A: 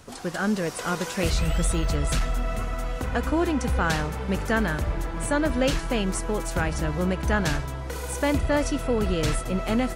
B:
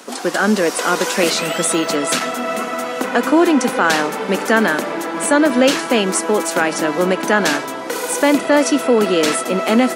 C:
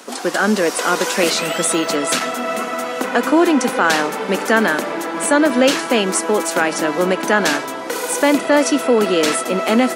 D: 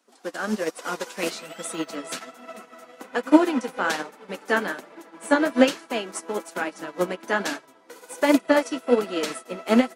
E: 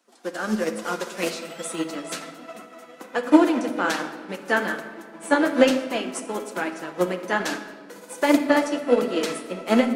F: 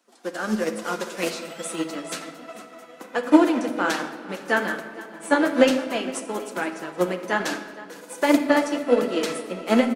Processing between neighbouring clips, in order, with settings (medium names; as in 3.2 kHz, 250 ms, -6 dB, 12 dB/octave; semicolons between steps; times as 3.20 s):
steep high-pass 220 Hz 36 dB/octave; in parallel at 0 dB: peak limiter -18.5 dBFS, peak gain reduction 7 dB; on the sum: trim +6.5 dB
bass shelf 160 Hz -4 dB
flange 1.2 Hz, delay 2.8 ms, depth 9.8 ms, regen +38%; upward expansion 2.5:1, over -31 dBFS; trim +3.5 dB
reverberation RT60 1.6 s, pre-delay 6 ms, DRR 6.5 dB
delay 463 ms -19 dB